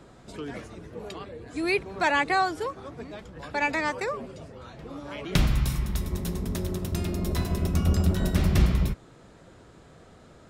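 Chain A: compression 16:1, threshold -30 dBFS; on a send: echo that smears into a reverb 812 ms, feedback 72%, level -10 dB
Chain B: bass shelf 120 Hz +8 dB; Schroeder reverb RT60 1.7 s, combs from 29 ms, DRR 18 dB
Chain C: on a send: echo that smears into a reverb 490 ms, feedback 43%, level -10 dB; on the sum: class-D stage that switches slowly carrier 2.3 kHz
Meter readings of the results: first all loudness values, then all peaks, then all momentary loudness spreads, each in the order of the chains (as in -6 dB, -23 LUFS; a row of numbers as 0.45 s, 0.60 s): -36.5 LUFS, -23.5 LUFS, -27.5 LUFS; -14.5 dBFS, -5.0 dBFS, -10.5 dBFS; 8 LU, 20 LU, 8 LU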